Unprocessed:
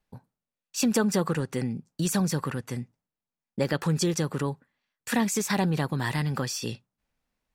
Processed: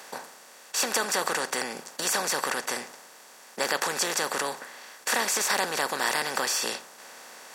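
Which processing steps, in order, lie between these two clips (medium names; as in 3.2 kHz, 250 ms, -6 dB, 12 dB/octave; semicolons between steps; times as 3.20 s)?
spectral levelling over time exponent 0.4; high-pass 730 Hz 12 dB/octave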